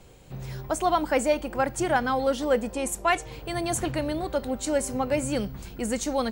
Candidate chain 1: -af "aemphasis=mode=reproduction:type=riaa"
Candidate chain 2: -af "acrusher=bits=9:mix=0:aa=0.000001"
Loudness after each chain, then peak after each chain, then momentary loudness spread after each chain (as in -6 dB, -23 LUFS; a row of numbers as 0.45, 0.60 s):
-23.5, -27.0 LUFS; -8.0, -10.5 dBFS; 5, 9 LU